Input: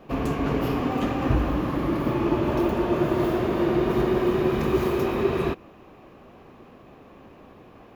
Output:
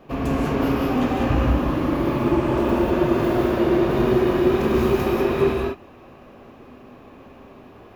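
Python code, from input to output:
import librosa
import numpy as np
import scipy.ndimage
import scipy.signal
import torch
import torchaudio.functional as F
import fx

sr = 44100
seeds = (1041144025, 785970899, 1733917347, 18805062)

y = fx.median_filter(x, sr, points=9, at=(2.18, 2.65))
y = fx.rev_gated(y, sr, seeds[0], gate_ms=220, shape='rising', drr_db=-1.0)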